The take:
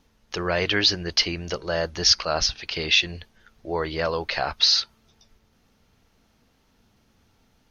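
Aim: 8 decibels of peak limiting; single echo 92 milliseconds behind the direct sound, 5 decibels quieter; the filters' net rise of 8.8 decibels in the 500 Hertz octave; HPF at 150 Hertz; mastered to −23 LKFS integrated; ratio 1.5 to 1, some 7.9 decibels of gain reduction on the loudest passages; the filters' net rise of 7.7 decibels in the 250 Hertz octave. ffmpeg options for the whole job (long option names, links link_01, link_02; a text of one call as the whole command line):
ffmpeg -i in.wav -af "highpass=150,equalizer=frequency=250:width_type=o:gain=8.5,equalizer=frequency=500:width_type=o:gain=8.5,acompressor=threshold=-36dB:ratio=1.5,alimiter=limit=-20dB:level=0:latency=1,aecho=1:1:92:0.562,volume=6.5dB" out.wav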